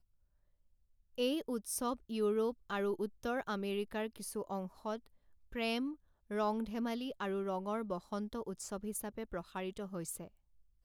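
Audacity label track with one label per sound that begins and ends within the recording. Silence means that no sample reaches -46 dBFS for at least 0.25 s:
1.180000	5.060000	sound
5.520000	5.940000	sound
6.310000	10.270000	sound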